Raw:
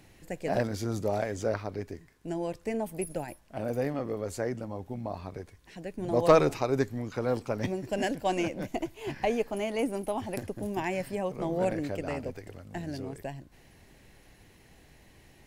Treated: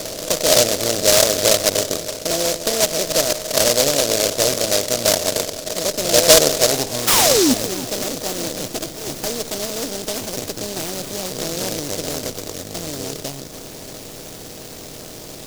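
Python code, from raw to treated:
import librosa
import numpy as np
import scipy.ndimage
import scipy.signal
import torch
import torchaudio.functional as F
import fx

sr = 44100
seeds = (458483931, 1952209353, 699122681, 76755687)

p1 = fx.bin_compress(x, sr, power=0.4)
p2 = fx.filter_sweep_lowpass(p1, sr, from_hz=620.0, to_hz=9500.0, start_s=6.64, end_s=8.35, q=4.7)
p3 = fx.spec_paint(p2, sr, seeds[0], shape='fall', start_s=7.07, length_s=0.47, low_hz=230.0, high_hz=1400.0, level_db=-11.0)
p4 = p3 + fx.echo_feedback(p3, sr, ms=307, feedback_pct=52, wet_db=-15.0, dry=0)
p5 = fx.noise_mod_delay(p4, sr, seeds[1], noise_hz=5300.0, depth_ms=0.24)
y = F.gain(torch.from_numpy(p5), -3.0).numpy()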